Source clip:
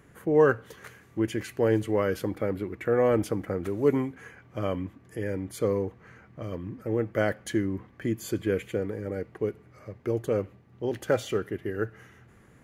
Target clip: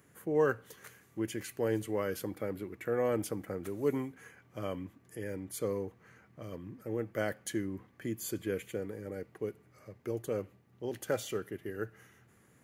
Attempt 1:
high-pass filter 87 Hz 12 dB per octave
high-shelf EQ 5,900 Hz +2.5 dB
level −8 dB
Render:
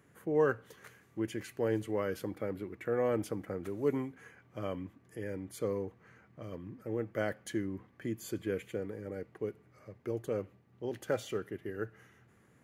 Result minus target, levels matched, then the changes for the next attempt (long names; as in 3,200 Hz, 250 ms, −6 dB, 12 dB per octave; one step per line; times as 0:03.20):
8,000 Hz band −6.5 dB
change: high-shelf EQ 5,900 Hz +12.5 dB